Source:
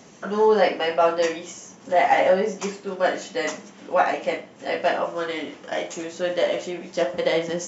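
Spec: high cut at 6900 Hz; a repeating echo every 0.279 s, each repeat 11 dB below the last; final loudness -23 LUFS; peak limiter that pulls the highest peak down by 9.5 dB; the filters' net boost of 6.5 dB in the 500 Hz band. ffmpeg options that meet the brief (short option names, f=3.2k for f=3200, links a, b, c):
-af "lowpass=6.9k,equalizer=f=500:t=o:g=7.5,alimiter=limit=-11dB:level=0:latency=1,aecho=1:1:279|558|837:0.282|0.0789|0.0221,volume=-1.5dB"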